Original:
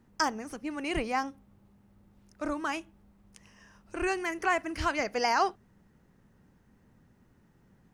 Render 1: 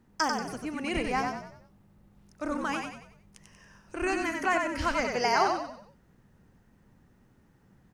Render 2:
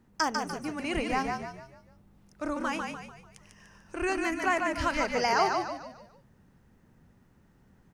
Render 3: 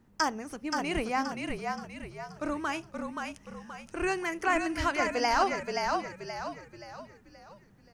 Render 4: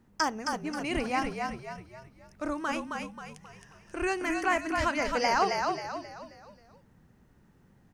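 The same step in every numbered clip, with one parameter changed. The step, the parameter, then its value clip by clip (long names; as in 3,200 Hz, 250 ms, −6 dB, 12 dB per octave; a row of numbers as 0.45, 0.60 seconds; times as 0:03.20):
echo with shifted repeats, delay time: 93, 147, 526, 267 milliseconds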